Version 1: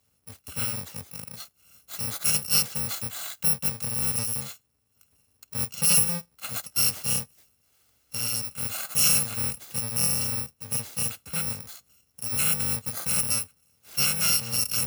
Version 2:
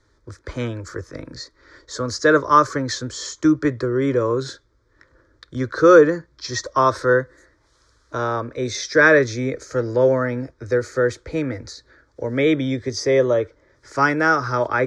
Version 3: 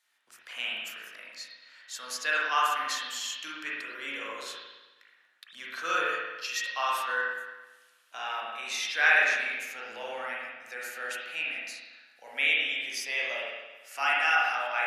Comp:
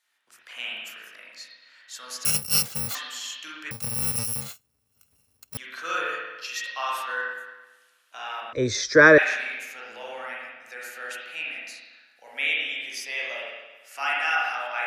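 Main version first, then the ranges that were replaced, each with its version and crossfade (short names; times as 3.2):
3
2.25–2.95 from 1
3.71–5.57 from 1
8.53–9.18 from 2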